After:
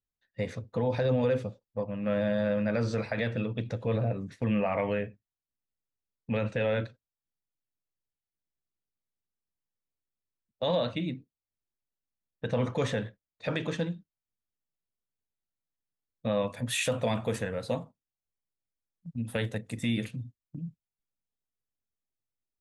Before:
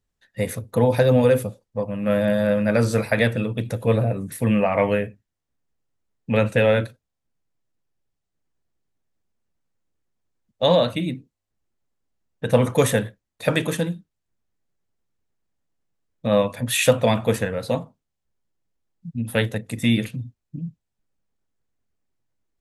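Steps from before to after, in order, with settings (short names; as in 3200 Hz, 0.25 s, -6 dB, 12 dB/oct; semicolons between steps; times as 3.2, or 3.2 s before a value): LPF 5800 Hz 24 dB/oct, from 16.48 s 10000 Hz; gate -37 dBFS, range -9 dB; limiter -12 dBFS, peak gain reduction 8 dB; gain -7 dB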